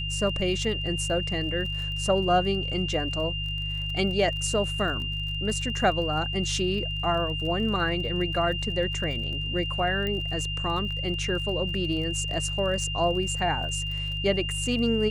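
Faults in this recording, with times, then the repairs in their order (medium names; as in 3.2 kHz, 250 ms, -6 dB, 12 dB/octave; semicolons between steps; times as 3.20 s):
crackle 34 per s -35 dBFS
hum 50 Hz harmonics 3 -33 dBFS
whine 2.8 kHz -31 dBFS
10.07 s: pop -18 dBFS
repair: de-click; de-hum 50 Hz, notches 3; band-stop 2.8 kHz, Q 30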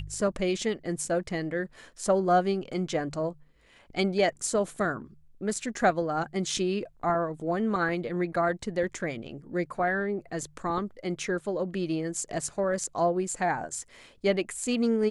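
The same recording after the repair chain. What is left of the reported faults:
nothing left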